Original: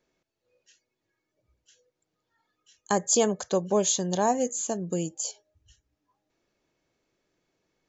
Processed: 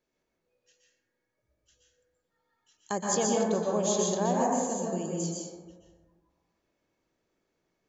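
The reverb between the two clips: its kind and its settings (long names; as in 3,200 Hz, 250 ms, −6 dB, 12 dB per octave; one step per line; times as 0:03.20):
dense smooth reverb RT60 1.5 s, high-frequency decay 0.3×, pre-delay 110 ms, DRR −3.5 dB
level −7 dB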